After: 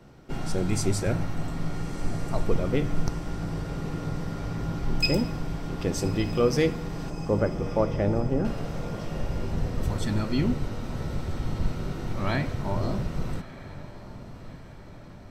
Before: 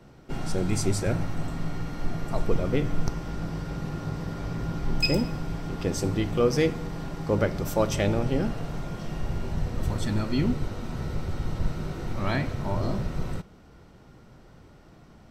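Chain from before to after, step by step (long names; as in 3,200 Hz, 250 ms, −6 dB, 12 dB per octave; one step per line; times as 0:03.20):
0:07.10–0:08.45: low-pass filter 1,300 Hz 12 dB per octave
feedback delay with all-pass diffusion 1,262 ms, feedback 55%, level −15 dB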